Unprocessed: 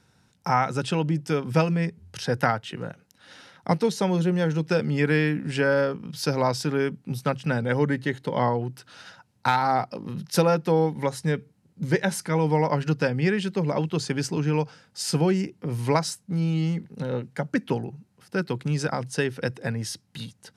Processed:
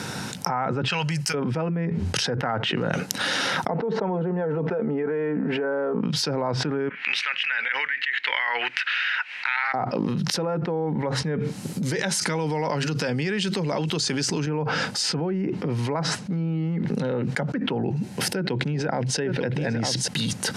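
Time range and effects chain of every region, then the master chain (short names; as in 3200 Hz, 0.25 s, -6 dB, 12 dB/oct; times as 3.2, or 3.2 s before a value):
0.88–1.34 median filter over 3 samples + Butterworth band-stop 3500 Hz, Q 6.2 + passive tone stack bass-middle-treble 10-0-10
3.68–6.01 band-pass 620 Hz, Q 0.86 + comb 4.5 ms, depth 48% + fast leveller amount 50%
6.89–9.74 Butterworth band-pass 2200 Hz, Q 2.1 + upward compressor, threshold -46 dBFS
11.38–14.47 high shelf 3700 Hz +11.5 dB + compressor 2.5:1, threshold -34 dBFS
17.82–20.08 bell 1200 Hz -13 dB 0.27 oct + echo 0.905 s -11.5 dB
whole clip: HPF 150 Hz 12 dB/oct; treble ducked by the level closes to 1600 Hz, closed at -22.5 dBFS; fast leveller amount 100%; gain -8.5 dB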